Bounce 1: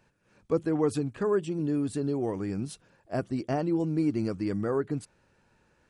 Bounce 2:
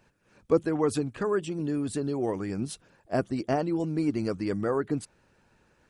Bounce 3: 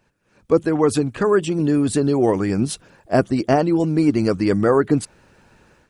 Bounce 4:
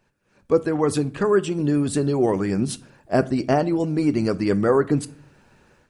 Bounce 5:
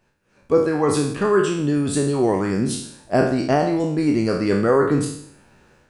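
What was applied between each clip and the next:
harmonic-percussive split harmonic -6 dB; gain +4.5 dB
AGC gain up to 12 dB
reverb RT60 0.45 s, pre-delay 5 ms, DRR 14 dB; gain -3 dB
spectral trails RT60 0.66 s

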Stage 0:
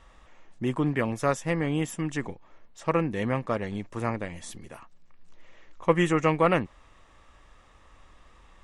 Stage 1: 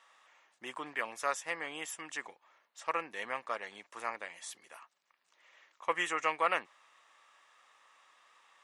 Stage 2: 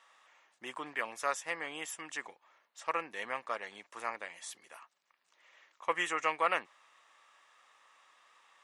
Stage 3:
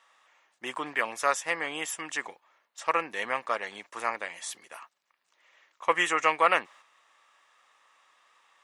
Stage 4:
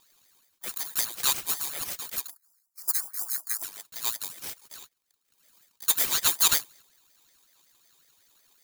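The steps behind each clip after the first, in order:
HPF 920 Hz 12 dB/oct; gain -2.5 dB
nothing audible
gate -58 dBFS, range -7 dB; gain +7.5 dB
FFT order left unsorted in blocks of 128 samples; spectral gain 2.3–3.63, 630–5700 Hz -29 dB; ring modulator with a swept carrier 1300 Hz, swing 40%, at 5.4 Hz; gain +3.5 dB

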